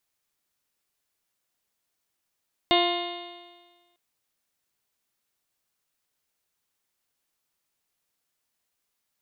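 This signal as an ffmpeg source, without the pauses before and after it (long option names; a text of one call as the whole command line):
ffmpeg -f lavfi -i "aevalsrc='0.0794*pow(10,-3*t/1.44)*sin(2*PI*348.16*t)+0.0944*pow(10,-3*t/1.44)*sin(2*PI*697.28*t)+0.0447*pow(10,-3*t/1.44)*sin(2*PI*1048.31*t)+0.0112*pow(10,-3*t/1.44)*sin(2*PI*1402.21*t)+0.0119*pow(10,-3*t/1.44)*sin(2*PI*1759.9*t)+0.0447*pow(10,-3*t/1.44)*sin(2*PI*2122.3*t)+0.0106*pow(10,-3*t/1.44)*sin(2*PI*2490.3*t)+0.0501*pow(10,-3*t/1.44)*sin(2*PI*2864.79*t)+0.0251*pow(10,-3*t/1.44)*sin(2*PI*3246.6*t)+0.0708*pow(10,-3*t/1.44)*sin(2*PI*3636.56*t)+0.0112*pow(10,-3*t/1.44)*sin(2*PI*4035.45*t)+0.0106*pow(10,-3*t/1.44)*sin(2*PI*4444.02*t)':duration=1.25:sample_rate=44100" out.wav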